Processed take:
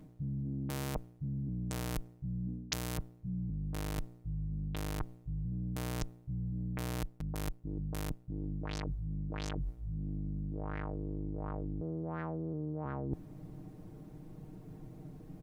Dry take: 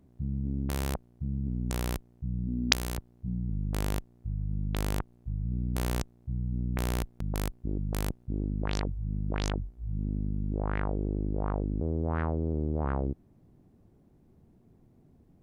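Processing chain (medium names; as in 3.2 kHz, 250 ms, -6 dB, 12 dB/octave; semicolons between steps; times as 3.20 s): comb 6.5 ms, depth 87%; reverse; compression 20:1, threshold -43 dBFS, peak gain reduction 28 dB; reverse; trim +9 dB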